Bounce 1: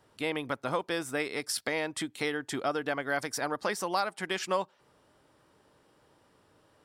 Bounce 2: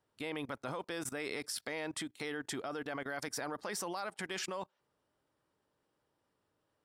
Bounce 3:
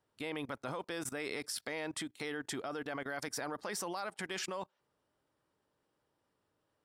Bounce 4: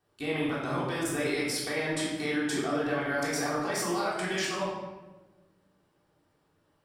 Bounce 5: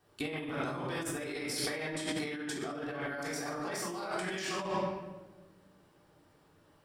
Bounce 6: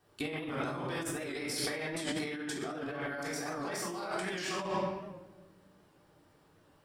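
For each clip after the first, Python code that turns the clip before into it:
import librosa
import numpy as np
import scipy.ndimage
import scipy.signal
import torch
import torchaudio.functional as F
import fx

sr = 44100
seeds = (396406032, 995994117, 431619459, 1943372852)

y1 = fx.level_steps(x, sr, step_db=21)
y1 = y1 * librosa.db_to_amplitude(3.0)
y2 = y1
y3 = fx.room_shoebox(y2, sr, seeds[0], volume_m3=720.0, walls='mixed', distance_m=3.5)
y3 = y3 * librosa.db_to_amplitude(1.0)
y4 = fx.over_compress(y3, sr, threshold_db=-37.0, ratio=-1.0)
y5 = fx.record_warp(y4, sr, rpm=78.0, depth_cents=100.0)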